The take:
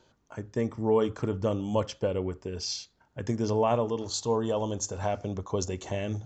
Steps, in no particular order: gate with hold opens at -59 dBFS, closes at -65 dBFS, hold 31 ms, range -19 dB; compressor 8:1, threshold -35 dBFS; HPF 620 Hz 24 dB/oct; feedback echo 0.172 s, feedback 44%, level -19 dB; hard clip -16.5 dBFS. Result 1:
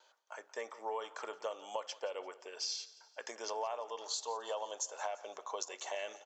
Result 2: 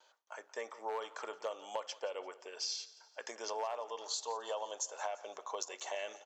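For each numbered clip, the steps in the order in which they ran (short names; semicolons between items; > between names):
gate with hold > HPF > hard clip > compressor > feedback echo; hard clip > HPF > compressor > feedback echo > gate with hold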